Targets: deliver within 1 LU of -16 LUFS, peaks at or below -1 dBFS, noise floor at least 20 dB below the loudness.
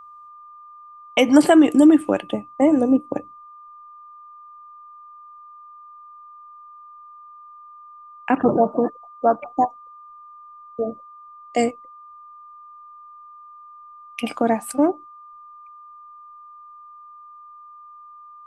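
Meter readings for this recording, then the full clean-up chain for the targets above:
steady tone 1200 Hz; tone level -41 dBFS; loudness -19.5 LUFS; peak -2.5 dBFS; loudness target -16.0 LUFS
-> notch 1200 Hz, Q 30; gain +3.5 dB; limiter -1 dBFS

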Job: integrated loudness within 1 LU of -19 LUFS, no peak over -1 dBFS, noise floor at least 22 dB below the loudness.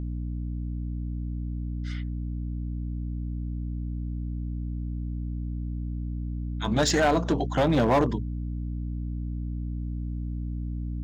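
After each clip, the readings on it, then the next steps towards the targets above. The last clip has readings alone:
clipped 0.7%; flat tops at -16.5 dBFS; hum 60 Hz; harmonics up to 300 Hz; hum level -29 dBFS; loudness -30.0 LUFS; peak -16.5 dBFS; loudness target -19.0 LUFS
-> clip repair -16.5 dBFS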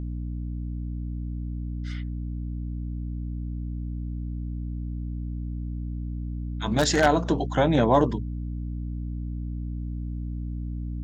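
clipped 0.0%; hum 60 Hz; harmonics up to 300 Hz; hum level -29 dBFS
-> notches 60/120/180/240/300 Hz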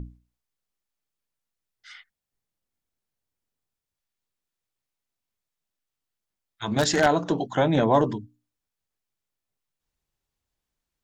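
hum none; loudness -23.0 LUFS; peak -7.0 dBFS; loudness target -19.0 LUFS
-> gain +4 dB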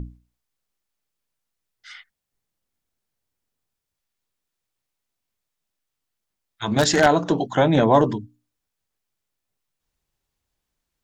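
loudness -19.0 LUFS; peak -3.0 dBFS; noise floor -83 dBFS

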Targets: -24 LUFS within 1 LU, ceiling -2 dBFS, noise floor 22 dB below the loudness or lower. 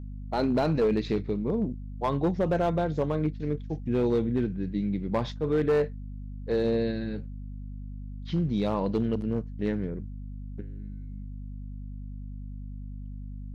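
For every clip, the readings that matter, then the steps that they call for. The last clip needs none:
clipped 0.9%; flat tops at -19.0 dBFS; hum 50 Hz; harmonics up to 250 Hz; hum level -36 dBFS; loudness -28.5 LUFS; peak -19.0 dBFS; loudness target -24.0 LUFS
-> clip repair -19 dBFS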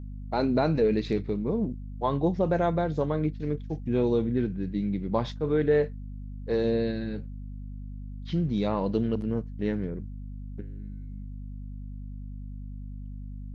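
clipped 0.0%; hum 50 Hz; harmonics up to 250 Hz; hum level -35 dBFS
-> notches 50/100/150/200/250 Hz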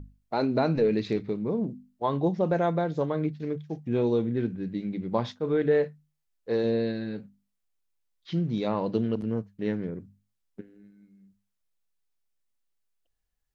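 hum none; loudness -28.5 LUFS; peak -13.5 dBFS; loudness target -24.0 LUFS
-> gain +4.5 dB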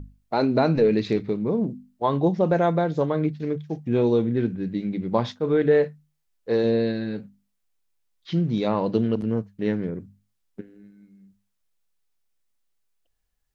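loudness -24.0 LUFS; peak -9.0 dBFS; noise floor -74 dBFS

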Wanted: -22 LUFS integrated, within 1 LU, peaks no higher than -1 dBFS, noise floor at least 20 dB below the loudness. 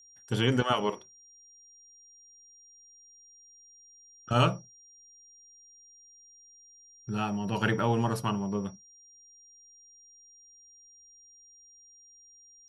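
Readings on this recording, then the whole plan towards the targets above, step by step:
steady tone 5700 Hz; tone level -54 dBFS; loudness -29.5 LUFS; peak -10.5 dBFS; loudness target -22.0 LUFS
-> notch 5700 Hz, Q 30; gain +7.5 dB

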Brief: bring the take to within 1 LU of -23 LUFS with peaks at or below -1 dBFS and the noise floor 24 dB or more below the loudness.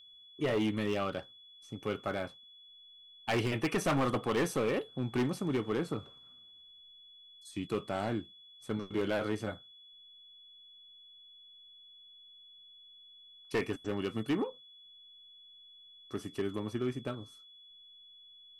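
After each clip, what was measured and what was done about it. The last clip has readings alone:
clipped 1.3%; flat tops at -25.5 dBFS; steady tone 3400 Hz; tone level -54 dBFS; loudness -34.5 LUFS; peak -25.5 dBFS; loudness target -23.0 LUFS
-> clip repair -25.5 dBFS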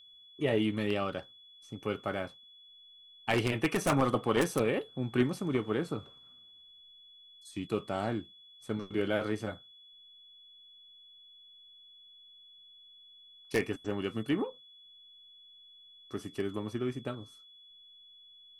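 clipped 0.0%; steady tone 3400 Hz; tone level -54 dBFS
-> notch 3400 Hz, Q 30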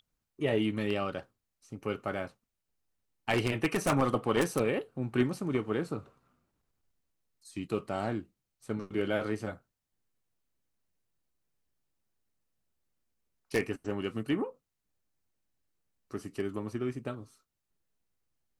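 steady tone none; loudness -33.0 LUFS; peak -16.0 dBFS; loudness target -23.0 LUFS
-> gain +10 dB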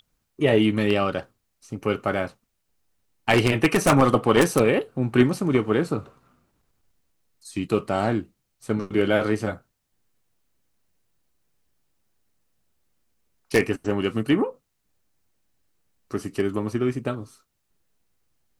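loudness -23.0 LUFS; peak -6.0 dBFS; noise floor -75 dBFS

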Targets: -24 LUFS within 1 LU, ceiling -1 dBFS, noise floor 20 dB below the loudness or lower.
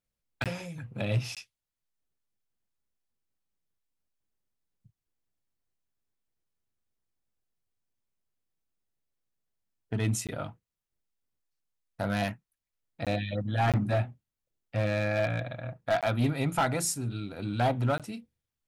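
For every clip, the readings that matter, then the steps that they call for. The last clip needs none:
clipped 0.5%; flat tops at -20.5 dBFS; dropouts 7; longest dropout 17 ms; loudness -31.0 LUFS; peak -20.5 dBFS; loudness target -24.0 LUFS
-> clip repair -20.5 dBFS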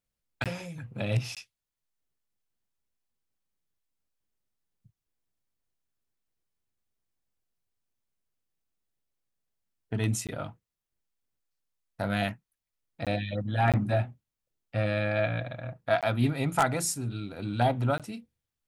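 clipped 0.0%; dropouts 7; longest dropout 17 ms
-> interpolate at 0.44/1.35/10.27/13.05/13.72/16.01/17.98, 17 ms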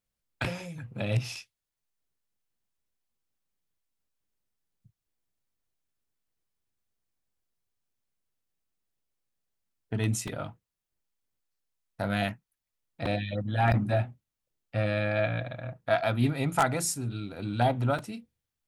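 dropouts 0; loudness -30.0 LUFS; peak -11.5 dBFS; loudness target -24.0 LUFS
-> gain +6 dB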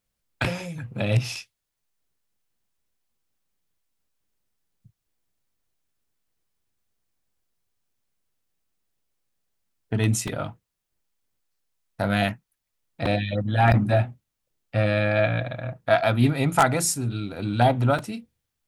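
loudness -24.0 LUFS; peak -5.5 dBFS; noise floor -81 dBFS

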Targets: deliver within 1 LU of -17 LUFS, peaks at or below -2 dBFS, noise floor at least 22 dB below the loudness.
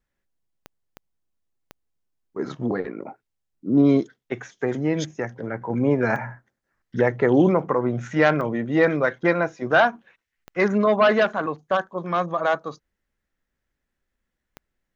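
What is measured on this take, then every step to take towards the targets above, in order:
clicks 7; loudness -22.0 LUFS; peak -5.5 dBFS; loudness target -17.0 LUFS
-> de-click; gain +5 dB; limiter -2 dBFS

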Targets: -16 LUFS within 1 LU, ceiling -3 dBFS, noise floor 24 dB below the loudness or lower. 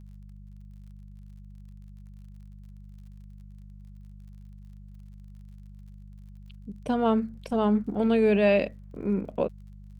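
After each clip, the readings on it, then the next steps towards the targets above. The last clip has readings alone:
ticks 46/s; hum 50 Hz; harmonics up to 200 Hz; hum level -43 dBFS; loudness -26.0 LUFS; peak -11.0 dBFS; loudness target -16.0 LUFS
-> de-click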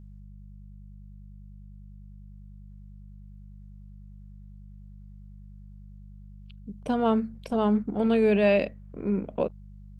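ticks 0.10/s; hum 50 Hz; harmonics up to 200 Hz; hum level -43 dBFS
-> de-hum 50 Hz, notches 4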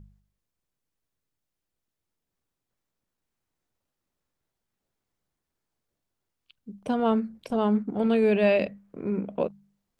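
hum none; loudness -26.0 LUFS; peak -11.0 dBFS; loudness target -16.0 LUFS
-> gain +10 dB; limiter -3 dBFS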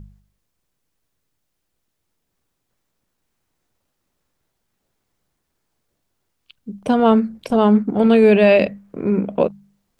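loudness -16.0 LUFS; peak -3.0 dBFS; noise floor -75 dBFS

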